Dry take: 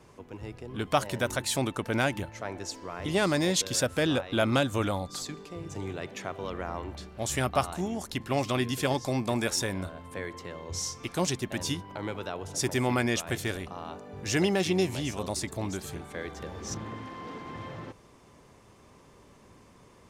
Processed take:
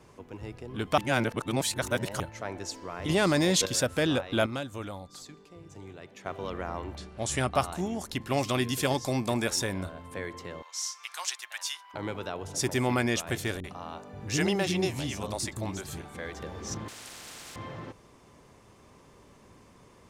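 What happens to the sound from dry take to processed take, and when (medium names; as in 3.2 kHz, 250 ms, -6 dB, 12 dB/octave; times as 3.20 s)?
0.98–2.20 s: reverse
3.09–3.66 s: level flattener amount 70%
4.46–6.26 s: gain -9.5 dB
6.98–7.54 s: careless resampling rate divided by 2×, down none, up filtered
8.27–9.34 s: treble shelf 4.8 kHz +5 dB
10.62–11.94 s: high-pass 1 kHz 24 dB/octave
13.60–16.33 s: bands offset in time lows, highs 40 ms, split 350 Hz
16.88–17.56 s: spectrum-flattening compressor 10:1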